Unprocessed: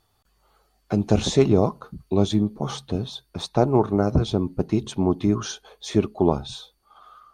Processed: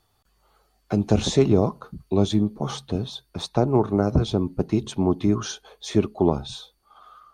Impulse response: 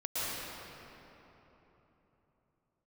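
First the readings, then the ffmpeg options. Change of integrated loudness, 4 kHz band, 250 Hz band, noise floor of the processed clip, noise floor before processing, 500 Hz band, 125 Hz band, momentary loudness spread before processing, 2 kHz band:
-0.5 dB, 0.0 dB, 0.0 dB, -67 dBFS, -67 dBFS, -0.5 dB, 0.0 dB, 14 LU, -1.0 dB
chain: -filter_complex "[0:a]acrossover=split=400[a][b];[b]acompressor=threshold=-20dB:ratio=6[c];[a][c]amix=inputs=2:normalize=0"

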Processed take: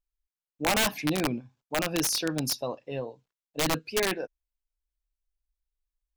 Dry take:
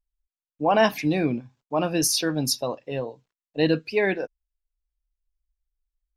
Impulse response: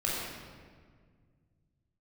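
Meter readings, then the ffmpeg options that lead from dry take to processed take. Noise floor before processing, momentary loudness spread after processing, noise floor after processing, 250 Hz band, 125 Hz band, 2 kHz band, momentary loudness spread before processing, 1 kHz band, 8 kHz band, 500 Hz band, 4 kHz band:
under -85 dBFS, 12 LU, under -85 dBFS, -6.0 dB, -5.5 dB, -2.5 dB, 12 LU, -6.0 dB, -2.5 dB, -7.5 dB, -1.5 dB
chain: -af "bandreject=f=1.9k:w=28,aeval=exprs='(mod(5.01*val(0)+1,2)-1)/5.01':c=same,volume=-4.5dB"

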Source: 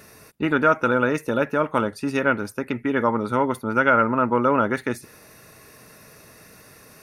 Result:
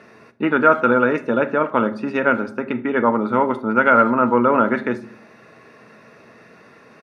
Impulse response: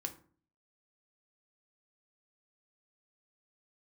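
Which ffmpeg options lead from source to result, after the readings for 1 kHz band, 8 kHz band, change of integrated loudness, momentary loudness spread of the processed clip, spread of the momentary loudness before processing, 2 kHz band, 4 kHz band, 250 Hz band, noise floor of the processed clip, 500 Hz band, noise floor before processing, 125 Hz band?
+4.0 dB, under -10 dB, +4.0 dB, 9 LU, 9 LU, +3.0 dB, n/a, +4.0 dB, -48 dBFS, +4.0 dB, -49 dBFS, -1.5 dB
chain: -filter_complex "[0:a]highpass=180,lowpass=2.6k,asplit=2[a][b];[b]adelay=80,highpass=300,lowpass=3.4k,asoftclip=type=hard:threshold=-14dB,volume=-26dB[c];[a][c]amix=inputs=2:normalize=0,asplit=2[d][e];[1:a]atrim=start_sample=2205,asetrate=30870,aresample=44100[f];[e][f]afir=irnorm=-1:irlink=0,volume=0dB[g];[d][g]amix=inputs=2:normalize=0,volume=-2dB"

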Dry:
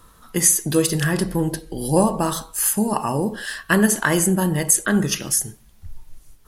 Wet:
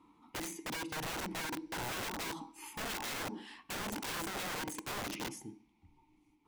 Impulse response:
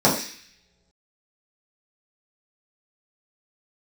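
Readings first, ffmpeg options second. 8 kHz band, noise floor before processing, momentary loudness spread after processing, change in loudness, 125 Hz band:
-24.5 dB, -51 dBFS, 7 LU, -20.0 dB, -25.5 dB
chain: -filter_complex "[0:a]asplit=3[a][b][c];[a]bandpass=f=300:t=q:w=8,volume=0dB[d];[b]bandpass=f=870:t=q:w=8,volume=-6dB[e];[c]bandpass=f=2.24k:t=q:w=8,volume=-9dB[f];[d][e][f]amix=inputs=3:normalize=0,acompressor=threshold=-33dB:ratio=16,aeval=exprs='(mod(79.4*val(0)+1,2)-1)/79.4':c=same,asplit=2[g][h];[1:a]atrim=start_sample=2205,lowpass=8.8k[i];[h][i]afir=irnorm=-1:irlink=0,volume=-39dB[j];[g][j]amix=inputs=2:normalize=0,volume=3.5dB"

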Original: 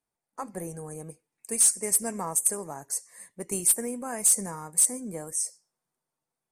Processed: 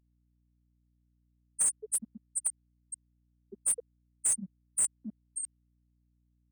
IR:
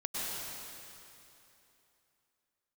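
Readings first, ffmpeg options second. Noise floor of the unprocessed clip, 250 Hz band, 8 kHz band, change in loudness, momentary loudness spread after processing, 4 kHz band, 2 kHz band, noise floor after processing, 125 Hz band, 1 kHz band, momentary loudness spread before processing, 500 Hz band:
under -85 dBFS, -12.0 dB, -7.0 dB, -6.5 dB, 18 LU, under -15 dB, -12.5 dB, -73 dBFS, under -10 dB, under -20 dB, 18 LU, -16.5 dB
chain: -filter_complex "[0:a]acrossover=split=230|3000[a][b][c];[b]acompressor=threshold=-41dB:ratio=2[d];[a][d][c]amix=inputs=3:normalize=0,afftfilt=real='re*gte(hypot(re,im),0.2)':imag='im*gte(hypot(re,im),0.2)':win_size=1024:overlap=0.75,areverse,acompressor=mode=upward:threshold=-28dB:ratio=2.5,areverse,asplit=2[e][f];[f]highpass=f=720:p=1,volume=13dB,asoftclip=type=tanh:threshold=-10dB[g];[e][g]amix=inputs=2:normalize=0,lowpass=f=4.6k:p=1,volume=-6dB,aeval=exprs='val(0)+0.000447*(sin(2*PI*60*n/s)+sin(2*PI*2*60*n/s)/2+sin(2*PI*3*60*n/s)/3+sin(2*PI*4*60*n/s)/4+sin(2*PI*5*60*n/s)/5)':c=same,volume=-3.5dB"

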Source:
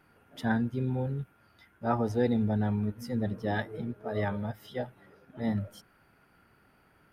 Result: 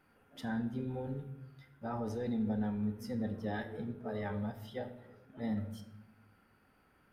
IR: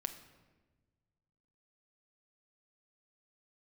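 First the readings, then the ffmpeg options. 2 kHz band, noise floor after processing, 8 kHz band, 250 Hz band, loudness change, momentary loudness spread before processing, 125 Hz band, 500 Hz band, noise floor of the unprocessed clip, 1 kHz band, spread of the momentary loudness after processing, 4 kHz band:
-8.5 dB, -69 dBFS, n/a, -5.5 dB, -7.0 dB, 11 LU, -8.5 dB, -7.5 dB, -65 dBFS, -8.5 dB, 17 LU, -6.5 dB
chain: -filter_complex "[0:a]alimiter=level_in=0.5dB:limit=-24dB:level=0:latency=1:release=12,volume=-0.5dB[a];[1:a]atrim=start_sample=2205,asetrate=70560,aresample=44100[b];[a][b]afir=irnorm=-1:irlink=0"

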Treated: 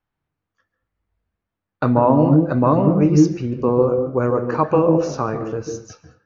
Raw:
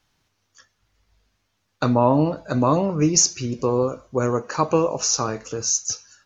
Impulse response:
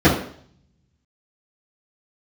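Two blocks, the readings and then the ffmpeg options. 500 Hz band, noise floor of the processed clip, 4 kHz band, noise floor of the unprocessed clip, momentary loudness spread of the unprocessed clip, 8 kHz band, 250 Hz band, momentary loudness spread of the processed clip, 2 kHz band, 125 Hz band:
+4.5 dB, -83 dBFS, under -10 dB, -72 dBFS, 8 LU, n/a, +6.0 dB, 11 LU, +0.5 dB, +6.0 dB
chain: -filter_complex "[0:a]agate=range=-13dB:threshold=-46dB:ratio=16:detection=peak,lowpass=1.9k,asplit=2[a][b];[1:a]atrim=start_sample=2205,atrim=end_sample=6174,adelay=136[c];[b][c]afir=irnorm=-1:irlink=0,volume=-33.5dB[d];[a][d]amix=inputs=2:normalize=0,volume=2.5dB"

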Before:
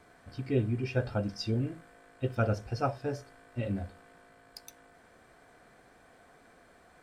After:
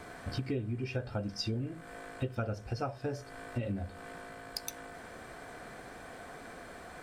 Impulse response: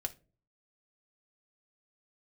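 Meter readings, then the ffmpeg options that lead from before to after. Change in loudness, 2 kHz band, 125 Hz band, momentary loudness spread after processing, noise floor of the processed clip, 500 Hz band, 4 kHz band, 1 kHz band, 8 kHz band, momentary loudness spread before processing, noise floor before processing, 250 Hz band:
-6.0 dB, 0.0 dB, -4.0 dB, 12 LU, -49 dBFS, -4.5 dB, +2.5 dB, -3.0 dB, +5.5 dB, 19 LU, -60 dBFS, -3.5 dB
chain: -af "acompressor=threshold=-44dB:ratio=8,volume=11.5dB"

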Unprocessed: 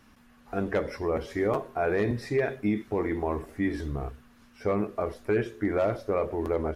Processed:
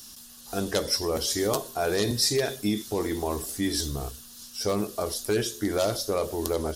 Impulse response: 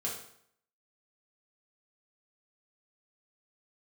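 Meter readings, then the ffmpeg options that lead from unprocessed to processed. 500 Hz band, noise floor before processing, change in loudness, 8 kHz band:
0.0 dB, -58 dBFS, +2.0 dB, n/a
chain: -af "aexciter=amount=10.9:drive=7.8:freq=3.4k"

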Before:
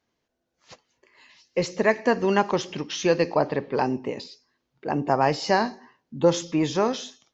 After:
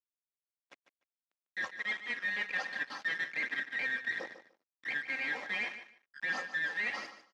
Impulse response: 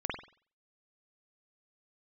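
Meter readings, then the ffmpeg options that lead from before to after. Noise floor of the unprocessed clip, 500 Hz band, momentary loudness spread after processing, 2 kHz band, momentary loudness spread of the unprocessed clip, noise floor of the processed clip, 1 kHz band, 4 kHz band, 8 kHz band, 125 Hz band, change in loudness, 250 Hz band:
-79 dBFS, -27.5 dB, 9 LU, +0.5 dB, 11 LU, under -85 dBFS, -20.5 dB, -10.0 dB, n/a, under -30 dB, -10.5 dB, -27.0 dB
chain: -af "afftfilt=real='real(if(lt(b,272),68*(eq(floor(b/68),0)*3+eq(floor(b/68),1)*0+eq(floor(b/68),2)*1+eq(floor(b/68),3)*2)+mod(b,68),b),0)':imag='imag(if(lt(b,272),68*(eq(floor(b/68),0)*3+eq(floor(b/68),1)*0+eq(floor(b/68),2)*1+eq(floor(b/68),3)*2)+mod(b,68),b),0)':win_size=2048:overlap=0.75,aecho=1:1:3.8:0.84,areverse,acompressor=threshold=-25dB:ratio=16,areverse,acrusher=bits=5:mix=0:aa=0.5,aphaser=in_gain=1:out_gain=1:delay=2.4:decay=0.39:speed=1.4:type=triangular,aeval=exprs='sgn(val(0))*max(abs(val(0))-0.002,0)':c=same,aeval=exprs='(tanh(22.4*val(0)+0.65)-tanh(0.65))/22.4':c=same,highpass=280,lowpass=2.6k,aecho=1:1:148|296:0.251|0.0452"

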